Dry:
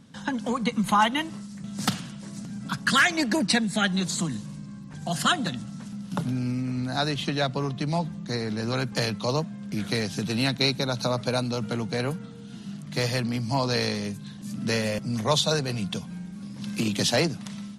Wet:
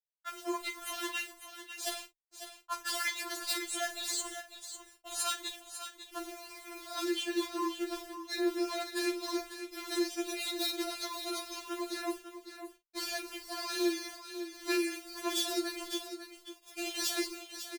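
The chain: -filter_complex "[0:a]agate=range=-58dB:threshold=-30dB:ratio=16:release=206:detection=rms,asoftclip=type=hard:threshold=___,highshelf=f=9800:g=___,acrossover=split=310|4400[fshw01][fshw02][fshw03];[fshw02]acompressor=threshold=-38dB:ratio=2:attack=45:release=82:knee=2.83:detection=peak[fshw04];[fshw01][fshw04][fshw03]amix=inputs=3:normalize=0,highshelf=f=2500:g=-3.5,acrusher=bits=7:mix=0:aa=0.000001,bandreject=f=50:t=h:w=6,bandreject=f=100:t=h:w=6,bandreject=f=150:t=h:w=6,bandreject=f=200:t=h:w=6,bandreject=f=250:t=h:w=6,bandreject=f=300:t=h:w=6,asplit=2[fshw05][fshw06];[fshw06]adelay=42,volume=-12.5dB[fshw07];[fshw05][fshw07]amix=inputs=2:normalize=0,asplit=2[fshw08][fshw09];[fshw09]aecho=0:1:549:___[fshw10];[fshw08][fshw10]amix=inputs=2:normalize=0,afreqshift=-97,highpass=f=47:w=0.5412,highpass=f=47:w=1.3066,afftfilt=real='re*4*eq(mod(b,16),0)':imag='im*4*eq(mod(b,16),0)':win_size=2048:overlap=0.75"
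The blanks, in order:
-23.5dB, 9.5, 0.316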